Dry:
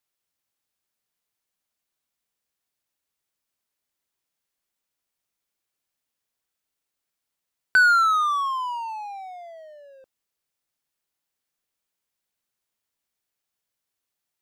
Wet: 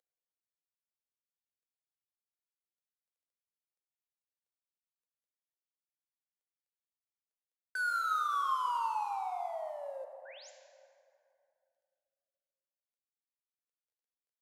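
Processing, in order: CVSD 64 kbps; reverse; compressor 8:1, threshold -27 dBFS, peak gain reduction 13.5 dB; reverse; painted sound rise, 10.25–10.5, 1400–7700 Hz -48 dBFS; resonant high-pass 490 Hz, resonance Q 4.9; plate-style reverb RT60 2.6 s, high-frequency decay 0.5×, DRR 4 dB; gain -6.5 dB

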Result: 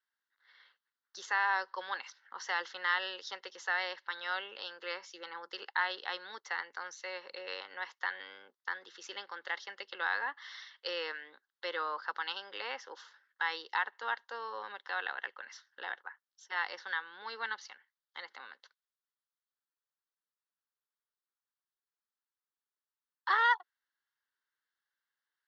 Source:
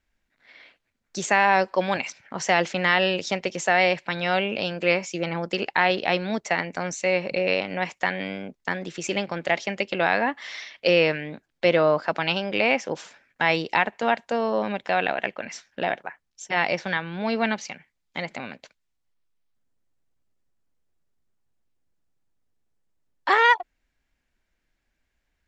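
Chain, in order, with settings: HPF 550 Hz 24 dB/oct; high shelf 4100 Hz -6 dB; fixed phaser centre 2400 Hz, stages 6; gain -5.5 dB

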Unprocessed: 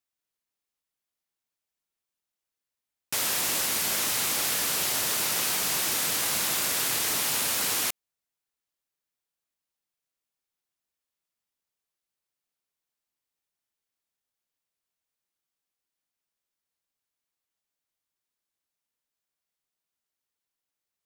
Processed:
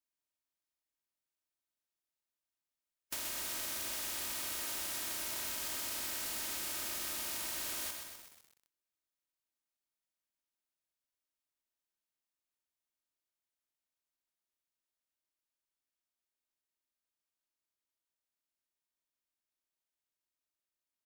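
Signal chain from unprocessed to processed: spectral contrast lowered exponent 0.17; comb 3.2 ms, depth 54%; reverb RT60 0.70 s, pre-delay 5 ms, DRR 8 dB; compressor 16:1, threshold -29 dBFS, peak gain reduction 7.5 dB; lo-fi delay 0.126 s, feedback 80%, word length 7-bit, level -6 dB; gain -7.5 dB

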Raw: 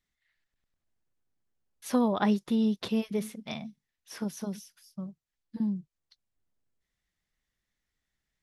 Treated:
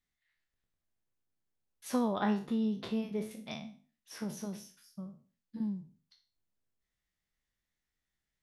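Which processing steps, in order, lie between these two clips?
spectral trails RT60 0.40 s; 2.22–3.31 high shelf 3400 Hz -8.5 dB; gain -5.5 dB

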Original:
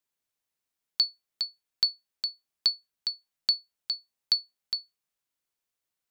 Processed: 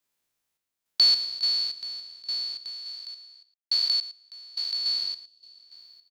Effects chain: spectral trails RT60 2.22 s; 2.7–4.78 HPF 530 Hz 6 dB/oct; 5.28–5.64 spectral repair 770–2500 Hz after; random-step tremolo, depth 100%; echo 0.112 s -14.5 dB; gain +4.5 dB

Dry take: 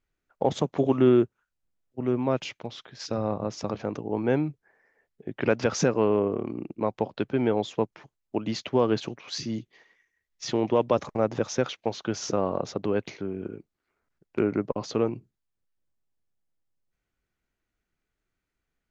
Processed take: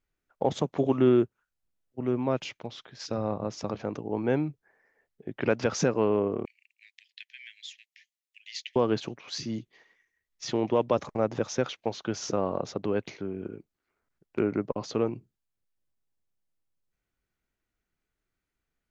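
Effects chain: 6.45–8.76 steep high-pass 1800 Hz 96 dB/oct; gain -2 dB

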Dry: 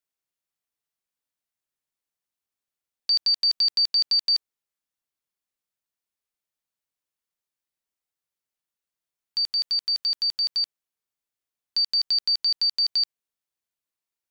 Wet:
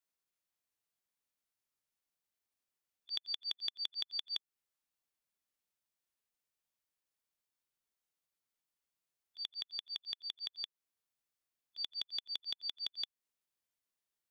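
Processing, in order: formant shift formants -5 st; auto swell 0.322 s; gain -2 dB

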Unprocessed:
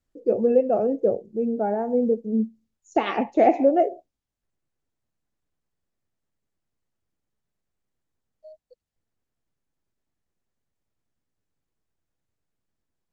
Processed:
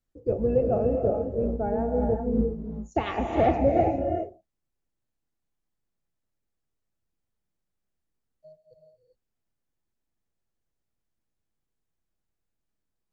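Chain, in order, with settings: octaver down 2 oct, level -1 dB; non-linear reverb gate 0.43 s rising, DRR 3 dB; gain -5 dB

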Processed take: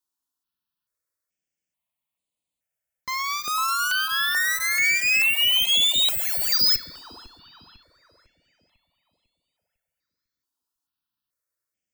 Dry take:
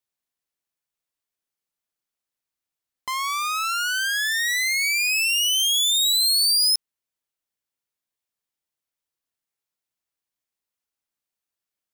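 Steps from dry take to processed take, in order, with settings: tracing distortion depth 0.14 ms; notch comb 400 Hz; dark delay 0.5 s, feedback 42%, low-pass 1700 Hz, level -7 dB; two-slope reverb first 0.96 s, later 2.8 s, from -22 dB, DRR 17 dB; step phaser 2.3 Hz 580–5500 Hz; gain +4 dB

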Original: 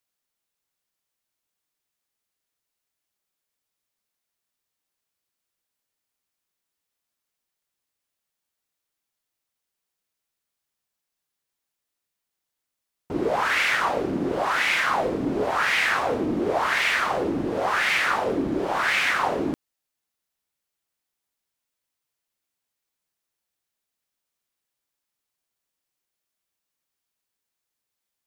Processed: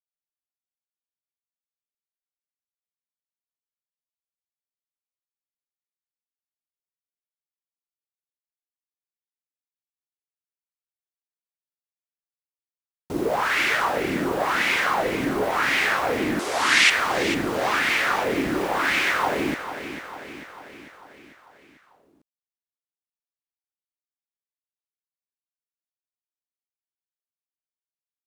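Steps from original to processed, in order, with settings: bit-crush 7-bit; 16.39–16.9 weighting filter ITU-R 468; on a send: feedback echo 0.446 s, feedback 57%, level -11 dB

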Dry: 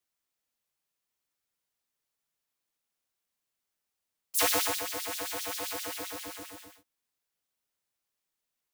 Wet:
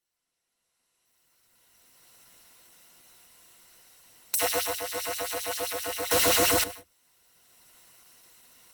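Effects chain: recorder AGC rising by 14 dB/s; ripple EQ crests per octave 2, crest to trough 10 dB; 6.11–6.64 sample leveller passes 5; Opus 16 kbps 48000 Hz

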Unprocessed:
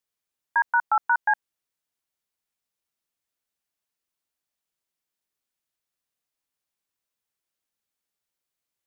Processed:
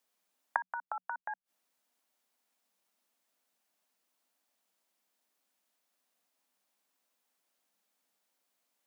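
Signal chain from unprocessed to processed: flipped gate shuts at -27 dBFS, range -27 dB; rippled Chebyshev high-pass 180 Hz, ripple 6 dB; gain +11 dB

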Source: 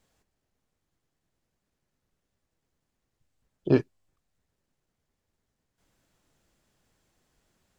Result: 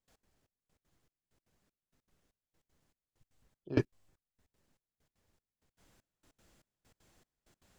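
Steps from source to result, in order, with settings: step gate ".x.xxx.." 195 bpm -24 dB; gain +4 dB

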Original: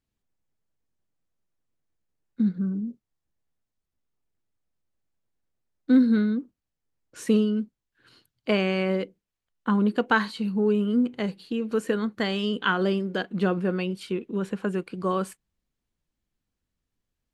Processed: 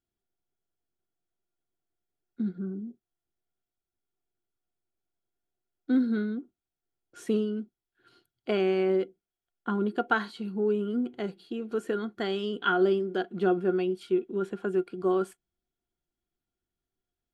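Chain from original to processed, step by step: small resonant body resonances 370/710/1400/3300 Hz, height 14 dB, ringing for 55 ms; gain -8.5 dB

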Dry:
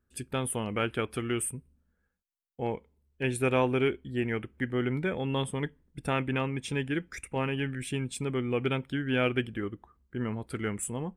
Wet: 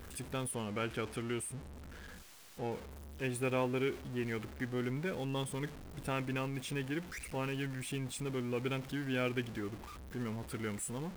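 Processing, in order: zero-crossing step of -34.5 dBFS; 0.51–2.72 high shelf 11000 Hz -9.5 dB; gain -8.5 dB

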